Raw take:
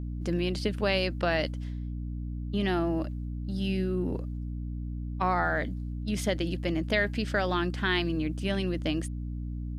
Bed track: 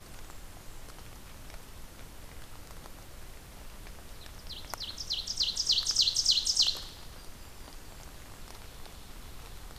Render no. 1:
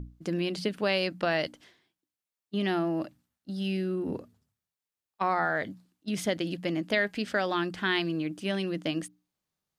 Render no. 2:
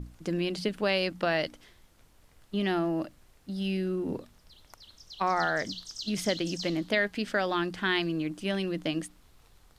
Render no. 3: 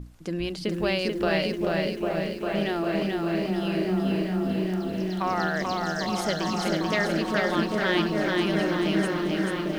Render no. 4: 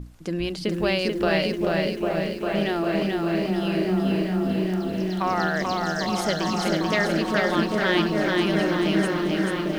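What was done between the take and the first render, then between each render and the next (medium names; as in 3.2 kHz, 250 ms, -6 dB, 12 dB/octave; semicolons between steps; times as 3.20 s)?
hum notches 60/120/180/240/300 Hz
add bed track -13.5 dB
delay with an opening low-pass 400 ms, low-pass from 400 Hz, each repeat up 1 oct, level 0 dB; bit-crushed delay 437 ms, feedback 55%, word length 9-bit, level -3 dB
trim +2.5 dB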